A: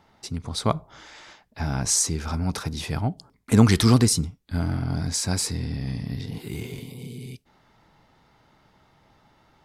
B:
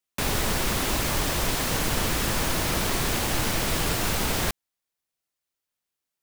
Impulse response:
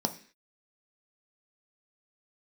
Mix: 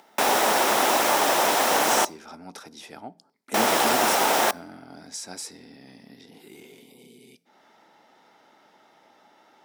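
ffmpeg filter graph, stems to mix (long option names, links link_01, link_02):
-filter_complex "[0:a]volume=-10dB,asplit=2[link_01][link_02];[link_02]volume=-16.5dB[link_03];[1:a]equalizer=frequency=860:width=0.94:gain=9.5,volume=2dB,asplit=3[link_04][link_05][link_06];[link_04]atrim=end=2.05,asetpts=PTS-STARTPTS,afade=type=out:start_time=2.046:duration=0.004:curve=hsin[link_07];[link_05]atrim=start=2.05:end=3.54,asetpts=PTS-STARTPTS,volume=0[link_08];[link_06]atrim=start=3.54,asetpts=PTS-STARTPTS,afade=type=in:duration=0.004:curve=hsin[link_09];[link_07][link_08][link_09]concat=n=3:v=0:a=1,asplit=2[link_10][link_11];[link_11]volume=-18.5dB[link_12];[2:a]atrim=start_sample=2205[link_13];[link_03][link_12]amix=inputs=2:normalize=0[link_14];[link_14][link_13]afir=irnorm=-1:irlink=0[link_15];[link_01][link_10][link_15]amix=inputs=3:normalize=0,highpass=370,acompressor=mode=upward:threshold=-45dB:ratio=2.5"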